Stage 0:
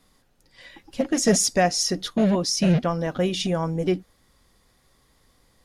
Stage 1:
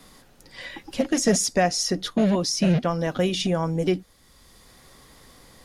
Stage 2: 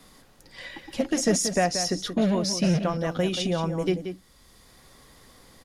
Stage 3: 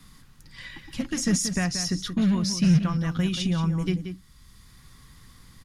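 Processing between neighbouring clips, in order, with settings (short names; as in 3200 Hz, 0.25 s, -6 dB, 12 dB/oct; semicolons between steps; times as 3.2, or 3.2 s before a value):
three-band squash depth 40%
outdoor echo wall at 31 m, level -9 dB; gain -2.5 dB
EQ curve 150 Hz 0 dB, 620 Hz -23 dB, 1100 Hz -8 dB; gain +7 dB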